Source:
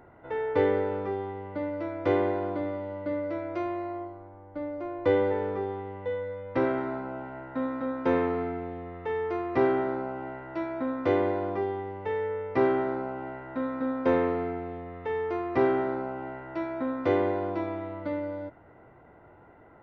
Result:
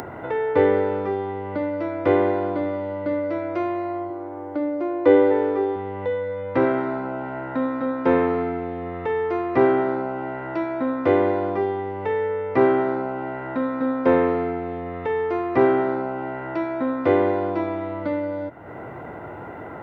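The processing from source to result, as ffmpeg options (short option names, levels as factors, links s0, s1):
-filter_complex "[0:a]asettb=1/sr,asplit=3[s0][s1][s2];[s0]atrim=end=4.104[s3];[s1]atrim=start=4.1:end=5.76,asetpts=PTS-STARTPTS,afade=t=in:d=0.004:c=qsin,afade=t=out:st=1.656:d=0.004:c=qsin,lowshelf=f=240:t=q:w=3:g=-6.5[s4];[s2]atrim=start=5.756[s5];[s3][s4]acrossfade=d=0.004:c1=hsin:c2=qsin[s6];[s6][s5]acrossfade=d=0.004:c1=qsin:c2=hsin,acrossover=split=3100[s7][s8];[s8]acompressor=threshold=0.00112:ratio=4:attack=1:release=60[s9];[s7][s9]amix=inputs=2:normalize=0,highpass=88,acompressor=mode=upward:threshold=0.0316:ratio=2.5,volume=2.11"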